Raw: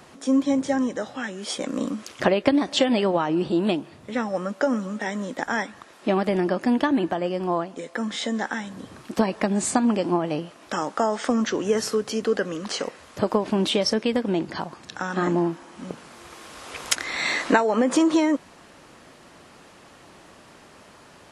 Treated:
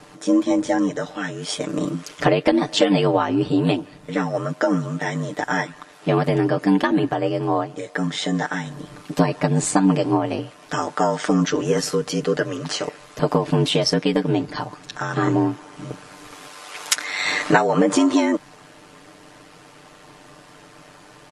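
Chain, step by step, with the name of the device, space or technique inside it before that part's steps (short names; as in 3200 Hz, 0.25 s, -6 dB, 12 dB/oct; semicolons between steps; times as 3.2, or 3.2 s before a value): 16.48–17.26 HPF 560 Hz 6 dB/oct; ring-modulated robot voice (ring modulator 48 Hz; comb 6.7 ms, depth 76%); gain +4 dB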